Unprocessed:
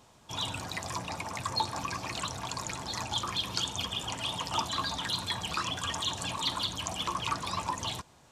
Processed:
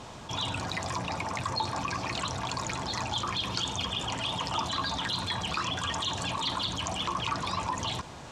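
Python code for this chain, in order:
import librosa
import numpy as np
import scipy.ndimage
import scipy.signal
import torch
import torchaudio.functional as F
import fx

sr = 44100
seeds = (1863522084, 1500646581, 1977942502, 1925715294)

y = fx.air_absorb(x, sr, metres=62.0)
y = fx.env_flatten(y, sr, amount_pct=50)
y = y * librosa.db_to_amplitude(-1.0)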